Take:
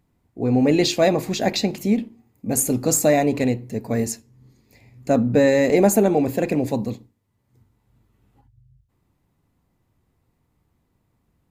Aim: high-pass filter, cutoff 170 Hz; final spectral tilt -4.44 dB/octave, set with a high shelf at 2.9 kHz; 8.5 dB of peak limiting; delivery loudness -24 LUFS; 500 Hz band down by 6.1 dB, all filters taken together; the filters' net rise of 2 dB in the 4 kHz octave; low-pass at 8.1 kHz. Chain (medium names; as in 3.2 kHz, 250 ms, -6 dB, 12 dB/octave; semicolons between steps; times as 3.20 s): high-pass 170 Hz; low-pass 8.1 kHz; peaking EQ 500 Hz -7.5 dB; treble shelf 2.9 kHz -6 dB; peaking EQ 4 kHz +7 dB; trim +3 dB; peak limiter -13.5 dBFS